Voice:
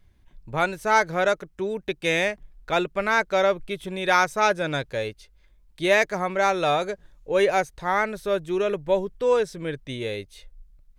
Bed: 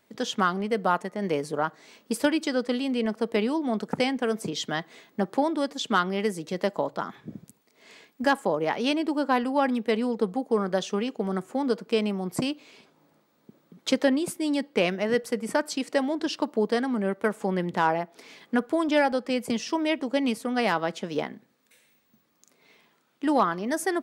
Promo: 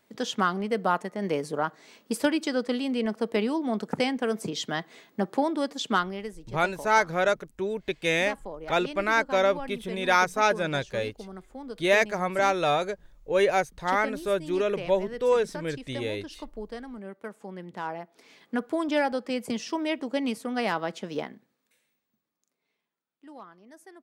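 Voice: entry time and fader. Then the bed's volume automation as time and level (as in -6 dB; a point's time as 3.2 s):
6.00 s, -2.0 dB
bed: 5.96 s -1 dB
6.36 s -13.5 dB
17.54 s -13.5 dB
18.73 s -3 dB
21.16 s -3 dB
22.88 s -23.5 dB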